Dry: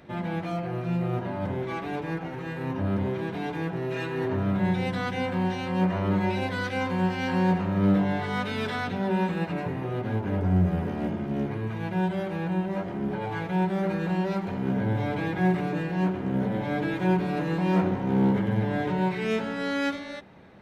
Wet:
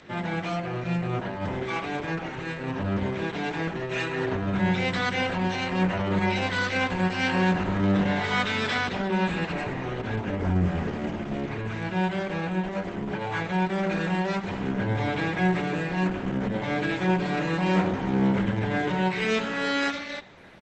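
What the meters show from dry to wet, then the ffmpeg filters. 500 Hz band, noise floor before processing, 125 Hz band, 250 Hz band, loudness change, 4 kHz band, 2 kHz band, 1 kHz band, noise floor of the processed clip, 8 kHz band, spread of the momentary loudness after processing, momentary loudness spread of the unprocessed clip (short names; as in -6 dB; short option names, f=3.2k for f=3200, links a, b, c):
+0.5 dB, -35 dBFS, -1.0 dB, -0.5 dB, +0.5 dB, +7.0 dB, +5.5 dB, +2.0 dB, -35 dBFS, n/a, 7 LU, 7 LU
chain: -filter_complex "[0:a]aemphasis=mode=production:type=75kf,asplit=2[a][b];[b]adelay=112,lowpass=f=4.8k:p=1,volume=-21dB,asplit=2[c][d];[d]adelay=112,lowpass=f=4.8k:p=1,volume=0.43,asplit=2[e][f];[f]adelay=112,lowpass=f=4.8k:p=1,volume=0.43[g];[a][c][e][g]amix=inputs=4:normalize=0,acrossover=split=160|2700[h][i][j];[i]crystalizer=i=6.5:c=0[k];[h][k][j]amix=inputs=3:normalize=0" -ar 48000 -c:a libopus -b:a 12k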